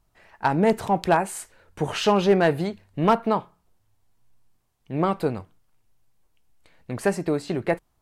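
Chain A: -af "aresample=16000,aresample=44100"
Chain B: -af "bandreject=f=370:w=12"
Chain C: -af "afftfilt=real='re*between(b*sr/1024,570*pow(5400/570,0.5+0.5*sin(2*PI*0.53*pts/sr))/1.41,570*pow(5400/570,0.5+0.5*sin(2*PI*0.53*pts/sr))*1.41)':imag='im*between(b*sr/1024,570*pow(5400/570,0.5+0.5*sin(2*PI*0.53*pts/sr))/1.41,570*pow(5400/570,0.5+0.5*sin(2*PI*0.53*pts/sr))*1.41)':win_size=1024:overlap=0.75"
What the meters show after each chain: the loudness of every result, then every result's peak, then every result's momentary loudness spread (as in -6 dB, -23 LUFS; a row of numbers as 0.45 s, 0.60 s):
-24.0 LUFS, -24.0 LUFS, -30.0 LUFS; -9.5 dBFS, -9.0 dBFS, -9.0 dBFS; 11 LU, 12 LU, 22 LU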